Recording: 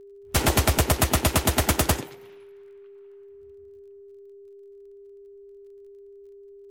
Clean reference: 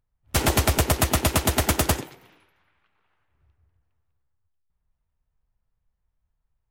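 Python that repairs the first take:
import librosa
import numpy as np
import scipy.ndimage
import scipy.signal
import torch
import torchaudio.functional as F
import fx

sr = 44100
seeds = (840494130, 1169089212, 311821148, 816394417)

y = fx.fix_declick_ar(x, sr, threshold=6.5)
y = fx.notch(y, sr, hz=400.0, q=30.0)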